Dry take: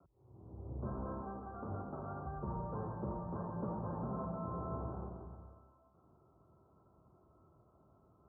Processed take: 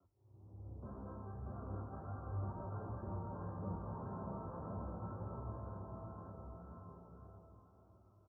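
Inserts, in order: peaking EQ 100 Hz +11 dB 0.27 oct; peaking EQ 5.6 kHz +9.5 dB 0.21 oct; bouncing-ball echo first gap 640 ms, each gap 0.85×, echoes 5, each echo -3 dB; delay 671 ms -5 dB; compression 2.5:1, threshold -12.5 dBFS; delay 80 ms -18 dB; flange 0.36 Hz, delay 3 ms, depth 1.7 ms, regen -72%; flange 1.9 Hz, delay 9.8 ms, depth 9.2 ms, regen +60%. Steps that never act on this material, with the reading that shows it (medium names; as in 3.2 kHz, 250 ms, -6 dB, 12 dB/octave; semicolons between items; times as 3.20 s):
peaking EQ 5.6 kHz: input has nothing above 1.4 kHz; compression, threshold -12.5 dBFS: peak at its input -22.0 dBFS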